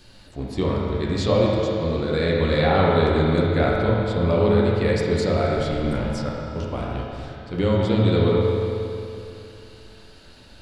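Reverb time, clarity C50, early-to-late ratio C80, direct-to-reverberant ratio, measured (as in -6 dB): 2.8 s, -2.0 dB, -0.5 dB, -5.0 dB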